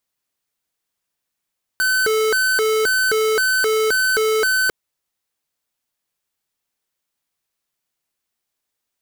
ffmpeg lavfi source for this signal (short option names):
-f lavfi -i "aevalsrc='0.133*(2*lt(mod((978*t+542/1.9*(0.5-abs(mod(1.9*t,1)-0.5))),1),0.5)-1)':d=2.9:s=44100"